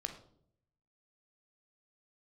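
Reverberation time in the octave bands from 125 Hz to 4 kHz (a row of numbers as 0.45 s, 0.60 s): 1.1 s, 0.85 s, 0.75 s, 0.55 s, 0.40 s, 0.40 s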